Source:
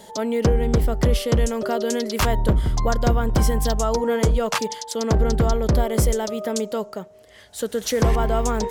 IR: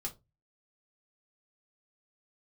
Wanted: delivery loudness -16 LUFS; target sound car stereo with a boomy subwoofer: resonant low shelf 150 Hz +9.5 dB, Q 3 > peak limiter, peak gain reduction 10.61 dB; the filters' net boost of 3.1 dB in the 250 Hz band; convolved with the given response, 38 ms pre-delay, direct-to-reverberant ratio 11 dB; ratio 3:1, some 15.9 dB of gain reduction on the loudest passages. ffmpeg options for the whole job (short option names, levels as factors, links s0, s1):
-filter_complex "[0:a]equalizer=f=250:t=o:g=8.5,acompressor=threshold=0.02:ratio=3,asplit=2[s0][s1];[1:a]atrim=start_sample=2205,adelay=38[s2];[s1][s2]afir=irnorm=-1:irlink=0,volume=0.316[s3];[s0][s3]amix=inputs=2:normalize=0,lowshelf=f=150:t=q:w=3:g=9.5,volume=6.68,alimiter=limit=0.531:level=0:latency=1"